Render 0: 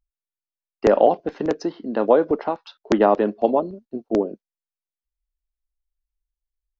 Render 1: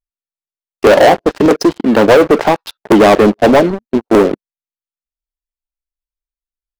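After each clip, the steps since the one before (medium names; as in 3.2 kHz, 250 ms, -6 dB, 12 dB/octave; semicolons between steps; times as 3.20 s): waveshaping leveller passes 5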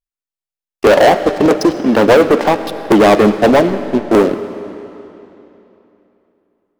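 reverberation RT60 3.2 s, pre-delay 30 ms, DRR 11 dB; trim -1.5 dB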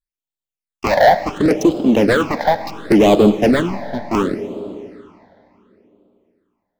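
phase shifter stages 8, 0.7 Hz, lowest notch 350–1800 Hz; trim -1 dB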